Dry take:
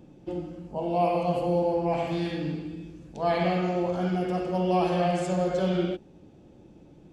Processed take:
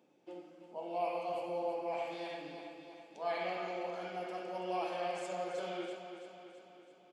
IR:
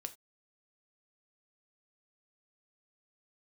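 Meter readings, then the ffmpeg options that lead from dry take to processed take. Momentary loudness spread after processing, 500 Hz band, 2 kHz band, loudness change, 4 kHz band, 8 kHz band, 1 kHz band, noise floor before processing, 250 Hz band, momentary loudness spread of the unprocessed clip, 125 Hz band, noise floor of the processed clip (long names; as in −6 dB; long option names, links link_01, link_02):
15 LU, −11.5 dB, −7.0 dB, −12.5 dB, −8.5 dB, can't be measured, −9.5 dB, −53 dBFS, −18.5 dB, 11 LU, −27.0 dB, −62 dBFS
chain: -filter_complex "[0:a]highpass=470,equalizer=frequency=2300:width_type=o:width=0.26:gain=4,flanger=delay=4.4:depth=5:regen=-67:speed=1.3:shape=sinusoidal,asplit=2[link_01][link_02];[link_02]aecho=0:1:331|662|993|1324|1655|1986|2317:0.355|0.199|0.111|0.0623|0.0349|0.0195|0.0109[link_03];[link_01][link_03]amix=inputs=2:normalize=0,volume=-5.5dB"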